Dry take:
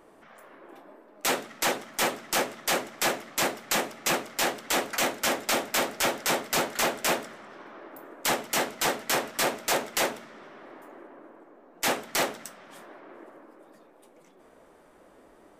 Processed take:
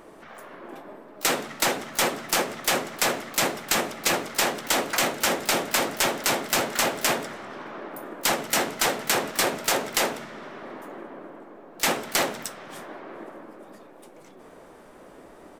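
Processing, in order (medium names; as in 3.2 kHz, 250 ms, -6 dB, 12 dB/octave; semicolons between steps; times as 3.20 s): compression 16:1, threshold -27 dBFS, peak gain reduction 7 dB; harmony voices -7 st -8 dB, +12 st -17 dB; trim +7 dB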